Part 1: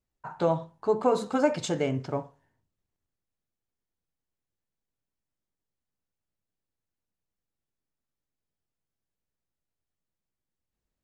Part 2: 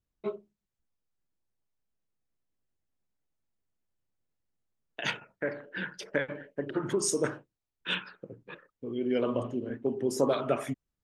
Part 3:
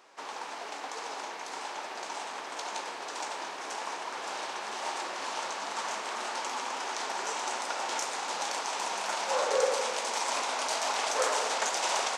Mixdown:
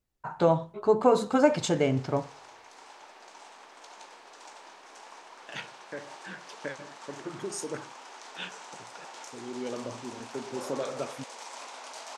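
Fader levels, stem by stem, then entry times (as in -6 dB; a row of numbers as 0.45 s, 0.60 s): +2.5 dB, -7.5 dB, -12.0 dB; 0.00 s, 0.50 s, 1.25 s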